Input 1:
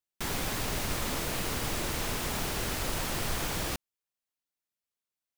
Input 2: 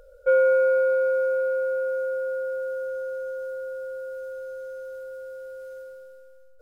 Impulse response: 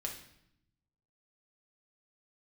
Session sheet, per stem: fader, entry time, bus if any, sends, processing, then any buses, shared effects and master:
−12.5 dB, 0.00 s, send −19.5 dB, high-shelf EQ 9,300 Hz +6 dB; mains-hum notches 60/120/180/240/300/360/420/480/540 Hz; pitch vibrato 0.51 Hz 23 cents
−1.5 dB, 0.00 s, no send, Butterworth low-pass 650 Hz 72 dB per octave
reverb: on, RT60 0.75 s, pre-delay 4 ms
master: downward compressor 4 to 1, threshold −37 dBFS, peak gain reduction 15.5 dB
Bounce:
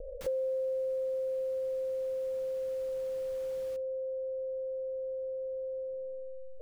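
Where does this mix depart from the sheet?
stem 1: missing high-shelf EQ 9,300 Hz +6 dB
stem 2 −1.5 dB → +9.5 dB

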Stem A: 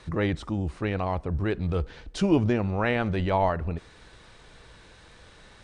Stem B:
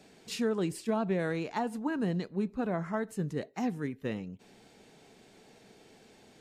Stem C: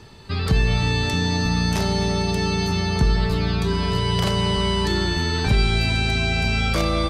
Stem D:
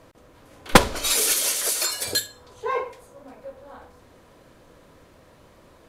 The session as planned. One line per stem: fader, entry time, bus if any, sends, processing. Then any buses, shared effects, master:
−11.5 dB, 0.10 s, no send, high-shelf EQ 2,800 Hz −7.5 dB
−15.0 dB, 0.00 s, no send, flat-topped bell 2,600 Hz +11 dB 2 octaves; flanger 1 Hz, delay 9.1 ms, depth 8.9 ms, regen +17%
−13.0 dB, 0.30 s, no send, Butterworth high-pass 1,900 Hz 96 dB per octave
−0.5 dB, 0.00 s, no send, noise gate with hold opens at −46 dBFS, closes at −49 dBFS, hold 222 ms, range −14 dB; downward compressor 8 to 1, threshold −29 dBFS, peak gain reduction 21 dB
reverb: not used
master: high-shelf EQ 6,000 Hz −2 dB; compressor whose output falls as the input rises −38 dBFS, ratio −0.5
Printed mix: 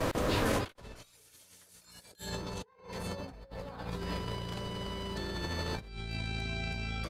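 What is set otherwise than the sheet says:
stem A −11.5 dB → −22.0 dB
stem C: missing Butterworth high-pass 1,900 Hz 96 dB per octave
stem D −0.5 dB → +11.5 dB

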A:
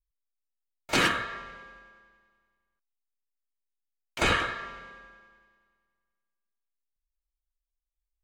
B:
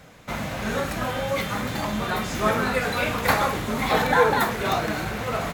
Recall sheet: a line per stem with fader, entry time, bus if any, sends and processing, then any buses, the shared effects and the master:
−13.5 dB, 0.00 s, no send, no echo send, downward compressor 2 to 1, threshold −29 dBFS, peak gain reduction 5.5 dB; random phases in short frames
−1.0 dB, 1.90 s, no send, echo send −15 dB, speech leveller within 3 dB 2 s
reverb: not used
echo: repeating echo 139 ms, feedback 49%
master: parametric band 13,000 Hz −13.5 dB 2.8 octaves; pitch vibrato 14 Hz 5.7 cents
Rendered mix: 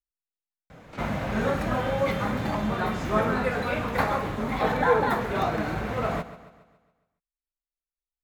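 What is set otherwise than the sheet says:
stem A: missing random phases in short frames
stem B: entry 1.90 s → 0.70 s

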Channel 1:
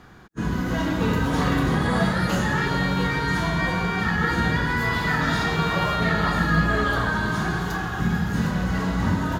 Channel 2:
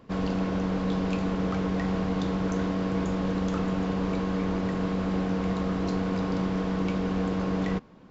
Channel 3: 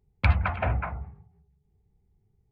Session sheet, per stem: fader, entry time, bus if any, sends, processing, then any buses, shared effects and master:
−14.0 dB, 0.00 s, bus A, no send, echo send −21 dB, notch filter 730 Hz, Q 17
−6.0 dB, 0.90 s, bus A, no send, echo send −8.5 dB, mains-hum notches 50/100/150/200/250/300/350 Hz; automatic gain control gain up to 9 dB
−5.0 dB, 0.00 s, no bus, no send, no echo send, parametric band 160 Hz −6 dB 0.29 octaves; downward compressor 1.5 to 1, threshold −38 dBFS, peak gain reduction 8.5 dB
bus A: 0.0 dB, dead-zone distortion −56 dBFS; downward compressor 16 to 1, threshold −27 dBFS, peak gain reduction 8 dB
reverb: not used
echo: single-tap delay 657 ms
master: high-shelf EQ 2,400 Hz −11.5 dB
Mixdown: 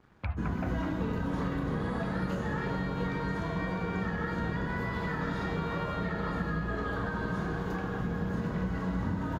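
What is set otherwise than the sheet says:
stem 1 −14.0 dB → −6.0 dB
stem 2: missing automatic gain control gain up to 9 dB

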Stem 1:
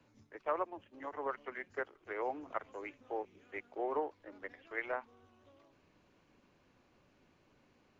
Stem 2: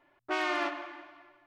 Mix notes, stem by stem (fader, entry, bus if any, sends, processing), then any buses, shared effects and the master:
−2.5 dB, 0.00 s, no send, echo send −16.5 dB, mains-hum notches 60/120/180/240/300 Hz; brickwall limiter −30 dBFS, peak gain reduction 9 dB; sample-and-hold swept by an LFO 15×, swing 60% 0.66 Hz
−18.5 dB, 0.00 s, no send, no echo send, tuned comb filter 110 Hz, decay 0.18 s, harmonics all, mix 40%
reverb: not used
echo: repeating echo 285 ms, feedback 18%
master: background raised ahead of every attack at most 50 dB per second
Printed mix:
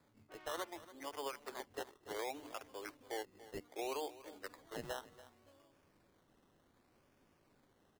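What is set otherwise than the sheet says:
stem 2 −18.5 dB → −26.0 dB
master: missing background raised ahead of every attack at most 50 dB per second

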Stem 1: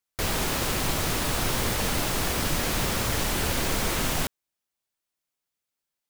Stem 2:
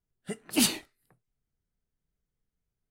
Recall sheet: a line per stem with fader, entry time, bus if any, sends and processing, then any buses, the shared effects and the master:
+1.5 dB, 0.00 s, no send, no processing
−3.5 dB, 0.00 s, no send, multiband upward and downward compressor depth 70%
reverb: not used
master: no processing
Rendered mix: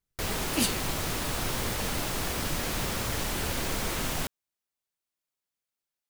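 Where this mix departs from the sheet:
stem 1 +1.5 dB → −4.5 dB
stem 2: missing multiband upward and downward compressor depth 70%

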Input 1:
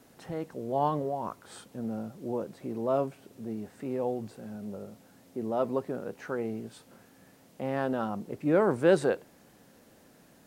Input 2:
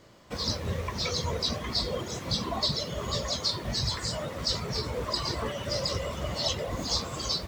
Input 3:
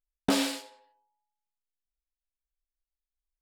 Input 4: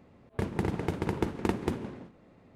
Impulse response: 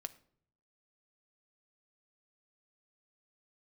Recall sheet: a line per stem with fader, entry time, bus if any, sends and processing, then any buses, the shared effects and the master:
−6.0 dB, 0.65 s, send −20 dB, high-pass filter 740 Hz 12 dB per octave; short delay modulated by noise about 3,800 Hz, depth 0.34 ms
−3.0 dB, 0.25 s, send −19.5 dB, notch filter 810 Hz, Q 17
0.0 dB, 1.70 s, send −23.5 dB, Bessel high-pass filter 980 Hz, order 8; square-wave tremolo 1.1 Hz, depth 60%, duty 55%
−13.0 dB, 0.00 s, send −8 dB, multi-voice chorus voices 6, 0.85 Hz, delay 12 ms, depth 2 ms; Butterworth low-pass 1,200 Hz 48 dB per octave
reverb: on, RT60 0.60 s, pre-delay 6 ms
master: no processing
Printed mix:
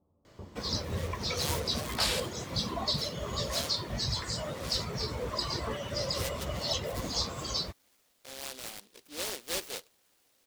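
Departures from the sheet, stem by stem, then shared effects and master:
stem 2: missing notch filter 810 Hz, Q 17
reverb return −9.0 dB

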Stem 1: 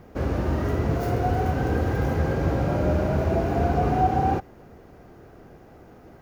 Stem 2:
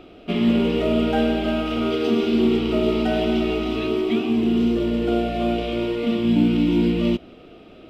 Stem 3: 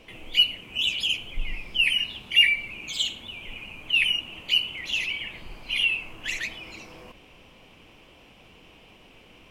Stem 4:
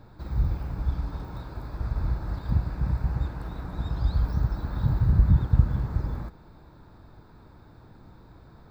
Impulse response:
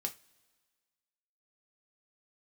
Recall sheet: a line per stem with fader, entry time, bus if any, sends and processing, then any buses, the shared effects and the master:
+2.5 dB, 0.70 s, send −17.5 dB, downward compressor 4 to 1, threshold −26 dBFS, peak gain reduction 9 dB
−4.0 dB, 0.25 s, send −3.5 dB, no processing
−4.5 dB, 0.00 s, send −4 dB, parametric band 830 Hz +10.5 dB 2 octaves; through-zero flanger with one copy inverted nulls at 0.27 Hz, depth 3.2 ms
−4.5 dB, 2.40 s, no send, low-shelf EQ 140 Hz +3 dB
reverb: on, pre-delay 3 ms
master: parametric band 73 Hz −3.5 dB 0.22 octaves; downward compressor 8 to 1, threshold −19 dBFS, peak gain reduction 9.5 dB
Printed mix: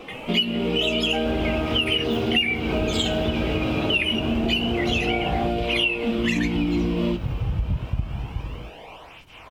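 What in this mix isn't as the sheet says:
stem 1: entry 0.70 s → 1.10 s
stem 2: entry 0.25 s → 0.00 s
stem 3 −4.5 dB → +4.0 dB

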